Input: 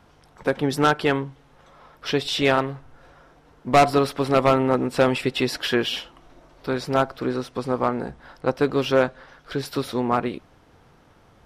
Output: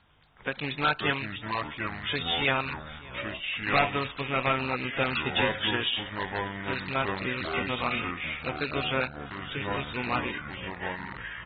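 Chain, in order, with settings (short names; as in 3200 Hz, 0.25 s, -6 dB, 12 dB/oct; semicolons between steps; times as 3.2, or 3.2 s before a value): rattling part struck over -31 dBFS, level -22 dBFS; passive tone stack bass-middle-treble 5-5-5; echoes that change speed 0.391 s, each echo -5 st, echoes 3, each echo -6 dB; echo 0.592 s -22.5 dB; gain +6 dB; AAC 16 kbps 32000 Hz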